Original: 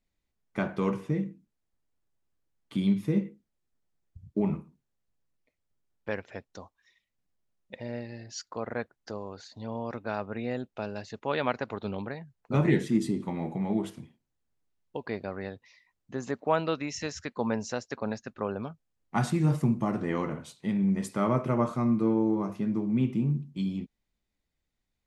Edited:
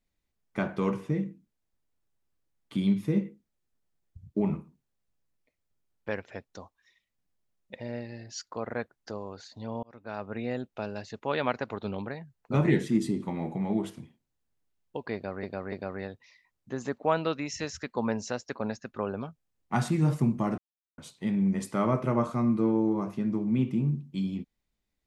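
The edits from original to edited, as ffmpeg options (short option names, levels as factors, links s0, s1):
-filter_complex "[0:a]asplit=6[s0][s1][s2][s3][s4][s5];[s0]atrim=end=9.83,asetpts=PTS-STARTPTS,afade=t=out:st=9.826:d=0.004:c=hsin[s6];[s1]atrim=start=9.83:end=15.432,asetpts=PTS-STARTPTS,afade=t=in:d=0.53[s7];[s2]atrim=start=15.138:end=15.432[s8];[s3]atrim=start=15.138:end=20,asetpts=PTS-STARTPTS,afade=t=out:st=4.858:d=0.004:c=hsin[s9];[s4]atrim=start=20:end=20.4,asetpts=PTS-STARTPTS,volume=0[s10];[s5]atrim=start=20.4,asetpts=PTS-STARTPTS,afade=t=in:d=0.004:c=hsin[s11];[s6][s7]concat=n=2:v=0:a=1[s12];[s12][s8]acrossfade=d=0.004:c1=hsin:c2=hsin[s13];[s9][s10][s11]concat=n=3:v=0:a=1[s14];[s13][s14]acrossfade=d=0.004:c1=hsin:c2=hsin"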